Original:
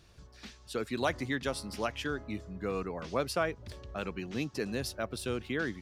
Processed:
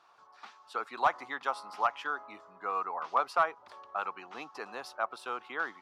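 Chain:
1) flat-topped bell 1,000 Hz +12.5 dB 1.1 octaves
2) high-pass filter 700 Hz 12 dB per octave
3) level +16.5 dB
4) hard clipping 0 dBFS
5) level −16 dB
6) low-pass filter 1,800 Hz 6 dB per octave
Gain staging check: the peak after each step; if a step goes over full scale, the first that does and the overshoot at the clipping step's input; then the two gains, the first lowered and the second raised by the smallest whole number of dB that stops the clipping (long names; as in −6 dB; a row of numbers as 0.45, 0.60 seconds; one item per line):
−8.5, −10.5, +6.0, 0.0, −16.0, −16.0 dBFS
step 3, 6.0 dB
step 3 +10.5 dB, step 5 −10 dB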